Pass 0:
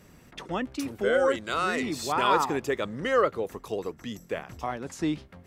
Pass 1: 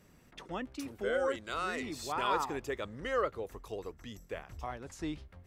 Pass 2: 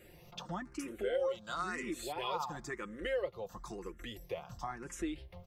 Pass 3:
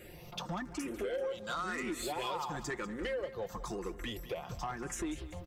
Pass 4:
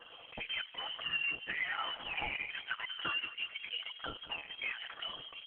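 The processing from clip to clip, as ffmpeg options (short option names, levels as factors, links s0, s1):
-af "asubboost=boost=7:cutoff=69,volume=0.398"
-filter_complex "[0:a]aecho=1:1:5.7:0.54,acompressor=threshold=0.00447:ratio=2,asplit=2[s0][s1];[s1]afreqshift=0.98[s2];[s0][s2]amix=inputs=2:normalize=1,volume=2.37"
-af "acompressor=threshold=0.0126:ratio=5,asoftclip=type=tanh:threshold=0.0158,aecho=1:1:194|388|582|776:0.188|0.0829|0.0365|0.016,volume=2.11"
-af "crystalizer=i=6:c=0,lowpass=f=2800:t=q:w=0.5098,lowpass=f=2800:t=q:w=0.6013,lowpass=f=2800:t=q:w=0.9,lowpass=f=2800:t=q:w=2.563,afreqshift=-3300" -ar 48000 -c:a libopus -b:a 8k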